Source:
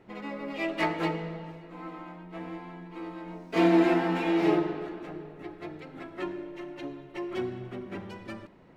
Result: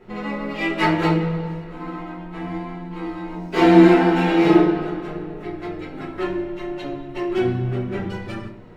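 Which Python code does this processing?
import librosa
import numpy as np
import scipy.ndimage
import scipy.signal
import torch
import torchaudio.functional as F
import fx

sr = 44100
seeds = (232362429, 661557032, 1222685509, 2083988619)

y = fx.room_shoebox(x, sr, seeds[0], volume_m3=34.0, walls='mixed', distance_m=1.0)
y = y * 10.0 ** (3.0 / 20.0)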